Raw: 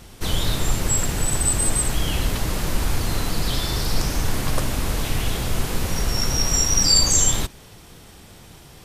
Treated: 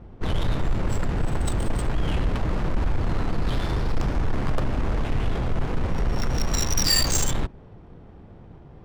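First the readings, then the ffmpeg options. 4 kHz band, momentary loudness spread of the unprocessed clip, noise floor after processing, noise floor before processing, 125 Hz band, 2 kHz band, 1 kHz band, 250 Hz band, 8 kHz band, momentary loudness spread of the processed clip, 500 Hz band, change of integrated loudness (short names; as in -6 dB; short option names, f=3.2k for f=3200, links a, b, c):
-6.5 dB, 10 LU, -46 dBFS, -45 dBFS, -0.5 dB, -4.0 dB, -2.0 dB, -0.5 dB, -10.5 dB, 6 LU, -1.0 dB, -5.0 dB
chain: -af "adynamicsmooth=sensitivity=2:basefreq=820,asoftclip=type=tanh:threshold=-16.5dB,volume=1.5dB"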